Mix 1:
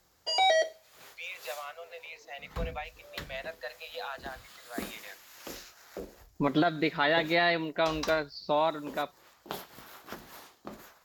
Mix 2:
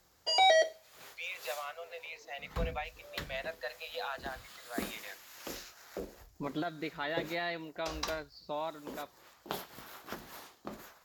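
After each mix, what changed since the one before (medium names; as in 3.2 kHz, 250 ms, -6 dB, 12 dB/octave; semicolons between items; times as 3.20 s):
second voice -10.5 dB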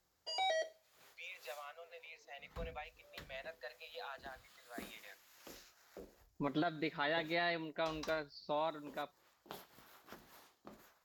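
first voice -9.0 dB; background -12.0 dB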